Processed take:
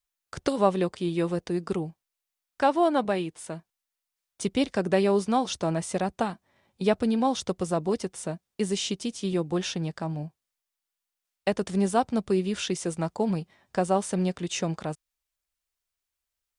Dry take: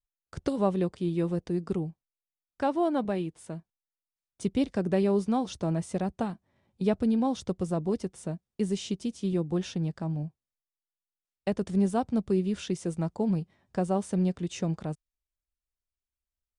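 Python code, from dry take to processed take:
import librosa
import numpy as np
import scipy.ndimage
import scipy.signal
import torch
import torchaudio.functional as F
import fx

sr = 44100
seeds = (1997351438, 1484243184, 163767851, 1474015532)

y = fx.low_shelf(x, sr, hz=400.0, db=-12.0)
y = F.gain(torch.from_numpy(y), 9.0).numpy()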